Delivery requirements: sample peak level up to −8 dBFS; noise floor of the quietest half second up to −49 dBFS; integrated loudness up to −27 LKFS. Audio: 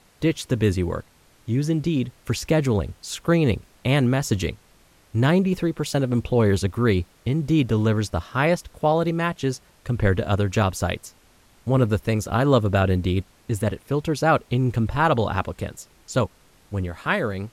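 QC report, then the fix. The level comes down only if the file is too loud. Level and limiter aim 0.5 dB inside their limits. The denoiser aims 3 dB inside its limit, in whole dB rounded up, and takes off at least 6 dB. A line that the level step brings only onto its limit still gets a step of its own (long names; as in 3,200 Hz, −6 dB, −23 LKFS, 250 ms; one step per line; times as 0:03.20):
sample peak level −6.5 dBFS: out of spec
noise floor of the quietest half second −56 dBFS: in spec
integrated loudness −23.0 LKFS: out of spec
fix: level −4.5 dB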